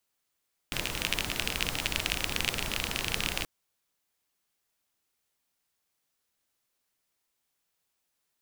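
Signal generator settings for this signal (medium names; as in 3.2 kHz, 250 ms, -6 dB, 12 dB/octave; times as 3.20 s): rain from filtered ticks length 2.73 s, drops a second 29, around 2.7 kHz, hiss -1 dB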